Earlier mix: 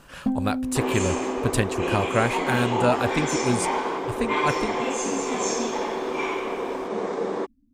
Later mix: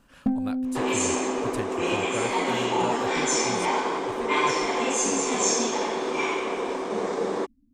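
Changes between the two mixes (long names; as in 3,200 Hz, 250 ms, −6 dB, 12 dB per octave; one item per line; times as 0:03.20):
speech −12.0 dB
second sound: add high-shelf EQ 4,300 Hz +8.5 dB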